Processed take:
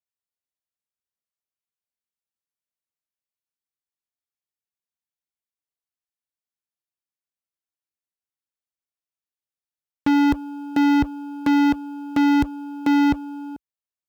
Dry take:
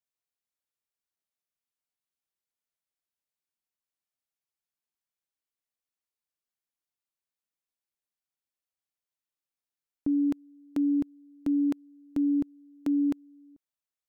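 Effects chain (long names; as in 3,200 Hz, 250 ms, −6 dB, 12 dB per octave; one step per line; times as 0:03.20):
high-pass filter 47 Hz 24 dB per octave
low-shelf EQ 110 Hz +7 dB
leveller curve on the samples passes 5
level +4 dB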